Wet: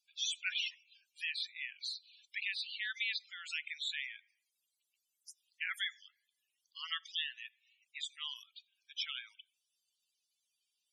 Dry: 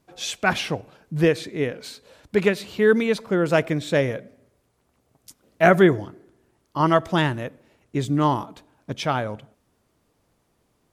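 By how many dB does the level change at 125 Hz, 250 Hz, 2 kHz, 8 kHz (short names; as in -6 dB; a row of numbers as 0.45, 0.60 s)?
under -40 dB, under -40 dB, -13.0 dB, -10.0 dB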